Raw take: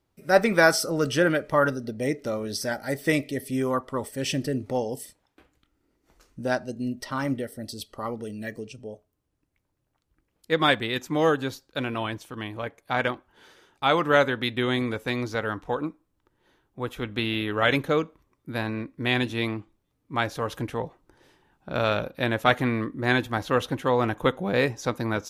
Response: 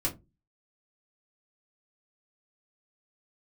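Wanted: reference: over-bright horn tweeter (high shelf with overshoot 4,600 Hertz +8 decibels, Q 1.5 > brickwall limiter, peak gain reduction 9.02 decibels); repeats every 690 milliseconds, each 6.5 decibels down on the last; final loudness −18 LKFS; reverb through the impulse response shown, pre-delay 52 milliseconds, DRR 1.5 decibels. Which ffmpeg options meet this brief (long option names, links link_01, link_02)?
-filter_complex "[0:a]aecho=1:1:690|1380|2070|2760|3450|4140:0.473|0.222|0.105|0.0491|0.0231|0.0109,asplit=2[link_01][link_02];[1:a]atrim=start_sample=2205,adelay=52[link_03];[link_02][link_03]afir=irnorm=-1:irlink=0,volume=-6.5dB[link_04];[link_01][link_04]amix=inputs=2:normalize=0,highshelf=frequency=4600:width_type=q:width=1.5:gain=8,volume=6dB,alimiter=limit=-6dB:level=0:latency=1"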